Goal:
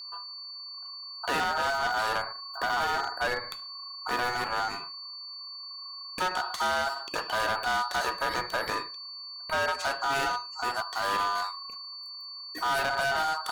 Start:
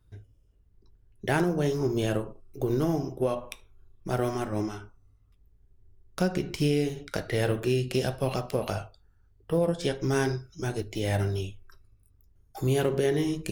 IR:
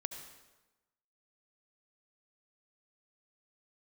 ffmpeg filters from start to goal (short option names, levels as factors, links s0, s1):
-af "aeval=exprs='val(0)*sin(2*PI*1100*n/s)':c=same,aeval=exprs='val(0)+0.00708*sin(2*PI*4500*n/s)':c=same,asoftclip=type=hard:threshold=0.0422,volume=1.58"